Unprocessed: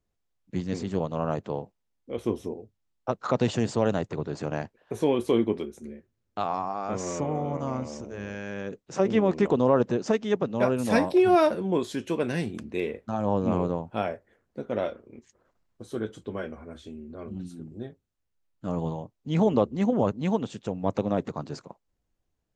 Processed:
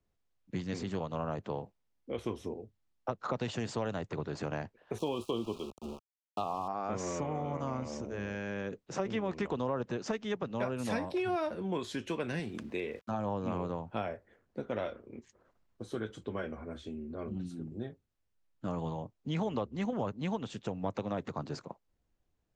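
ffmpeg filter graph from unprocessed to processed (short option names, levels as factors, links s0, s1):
-filter_complex "[0:a]asettb=1/sr,asplit=3[s0][s1][s2];[s0]atrim=end=4.984[s3];[s1]atrim=start=4.98:end=6.68,asetpts=PTS-STARTPTS,afade=t=in:d=0.004:c=qsin,afade=t=out:st=1.696:d=0.004:c=qsin,lowshelf=f=62:g=-9,aeval=exprs='val(0)*gte(abs(val(0)),0.00944)':c=same,asuperstop=centerf=1800:order=12:qfactor=1.5[s4];[s2]atrim=start=6.676[s5];[s3][s4]acrossfade=d=0.004:c1=hsin:c2=qsin[s6];[s6][s5]acrossfade=d=0.004:c1=qsin:c2=hsin,asettb=1/sr,asplit=3[s7][s8][s9];[s7]atrim=end=12.394[s10];[s8]atrim=start=12.39:end=13.11,asetpts=PTS-STARTPTS,afade=t=in:d=0.004:c=qsin,afade=t=out:st=0.716:d=0.004:c=qsin,lowshelf=f=190:g=-6.5,aeval=exprs='val(0)*gte(abs(val(0)),0.00178)':c=same[s11];[s9]atrim=start=13.106[s12];[s10][s11]acrossfade=d=0.004:c1=hsin:c2=qsin[s13];[s13][s12]acrossfade=d=0.004:c1=qsin:c2=hsin,highshelf=f=8900:g=-12,acrossover=split=100|940[s14][s15][s16];[s14]acompressor=threshold=0.00447:ratio=4[s17];[s15]acompressor=threshold=0.0178:ratio=4[s18];[s16]acompressor=threshold=0.01:ratio=4[s19];[s17][s18][s19]amix=inputs=3:normalize=0"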